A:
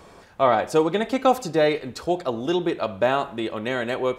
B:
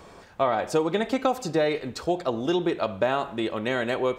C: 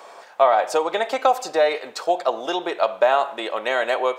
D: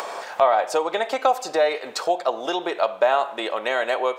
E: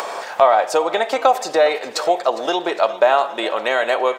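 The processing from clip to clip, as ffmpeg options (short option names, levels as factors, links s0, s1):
-af "equalizer=f=11000:w=4.7:g=-8.5,acompressor=threshold=0.112:ratio=6"
-af "highpass=f=670:t=q:w=1.6,volume=1.68"
-af "acompressor=mode=upward:threshold=0.112:ratio=2.5,volume=0.841"
-af "aecho=1:1:407|814|1221|1628|2035:0.133|0.0773|0.0449|0.026|0.0151,volume=1.68"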